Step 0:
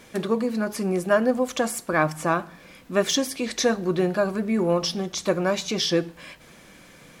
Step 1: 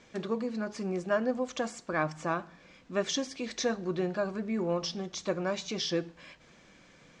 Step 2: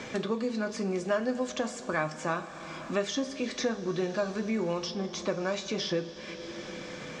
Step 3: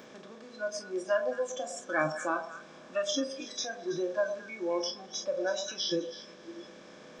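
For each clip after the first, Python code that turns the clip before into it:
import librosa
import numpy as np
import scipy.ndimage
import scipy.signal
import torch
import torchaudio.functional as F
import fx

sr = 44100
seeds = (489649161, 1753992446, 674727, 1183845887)

y1 = scipy.signal.sosfilt(scipy.signal.butter(6, 7300.0, 'lowpass', fs=sr, output='sos'), x)
y1 = F.gain(torch.from_numpy(y1), -8.5).numpy()
y2 = fx.rev_double_slope(y1, sr, seeds[0], early_s=0.2, late_s=3.7, knee_db=-19, drr_db=6.5)
y2 = fx.band_squash(y2, sr, depth_pct=70)
y3 = fx.bin_compress(y2, sr, power=0.4)
y3 = fx.noise_reduce_blind(y3, sr, reduce_db=24)
y3 = fx.echo_stepped(y3, sr, ms=109, hz=660.0, octaves=1.4, feedback_pct=70, wet_db=-7)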